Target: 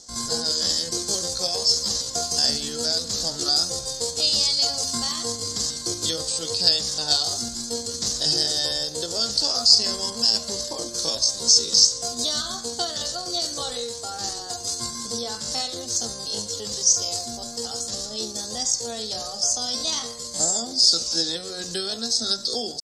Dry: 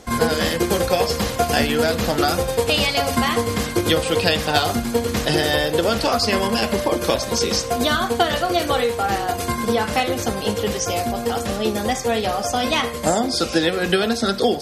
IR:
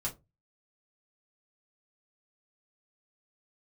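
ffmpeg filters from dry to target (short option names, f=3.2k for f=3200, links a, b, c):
-filter_complex "[0:a]lowpass=f=7.2k:t=q:w=2.5,atempo=0.64,highshelf=f=3.4k:t=q:w=3:g=11,asplit=2[a][b];[1:a]atrim=start_sample=2205[c];[b][c]afir=irnorm=-1:irlink=0,volume=-18dB[d];[a][d]amix=inputs=2:normalize=0,volume=-14.5dB"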